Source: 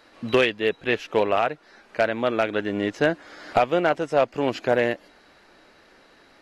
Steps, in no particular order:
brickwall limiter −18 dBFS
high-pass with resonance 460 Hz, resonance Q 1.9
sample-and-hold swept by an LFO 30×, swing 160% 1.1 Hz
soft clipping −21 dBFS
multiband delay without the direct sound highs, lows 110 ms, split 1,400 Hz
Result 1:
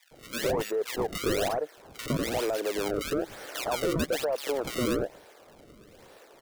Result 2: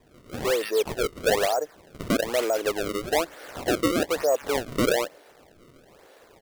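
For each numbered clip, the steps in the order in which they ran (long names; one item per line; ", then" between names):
high-pass with resonance, then sample-and-hold swept by an LFO, then brickwall limiter, then soft clipping, then multiband delay without the direct sound
soft clipping, then multiband delay without the direct sound, then brickwall limiter, then high-pass with resonance, then sample-and-hold swept by an LFO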